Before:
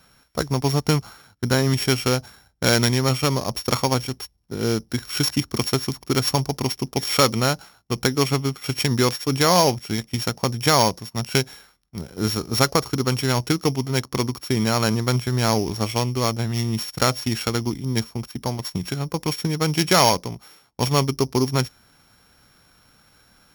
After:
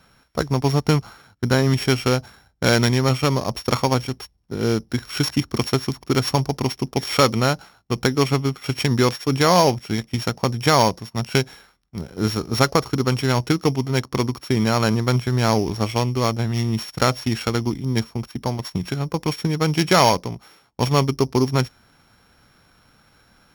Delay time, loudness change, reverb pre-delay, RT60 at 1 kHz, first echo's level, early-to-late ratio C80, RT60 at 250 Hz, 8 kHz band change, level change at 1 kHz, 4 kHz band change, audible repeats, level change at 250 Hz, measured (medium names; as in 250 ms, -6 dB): no echo, +1.0 dB, no reverb, no reverb, no echo, no reverb, no reverb, -3.5 dB, +1.5 dB, -1.5 dB, no echo, +2.0 dB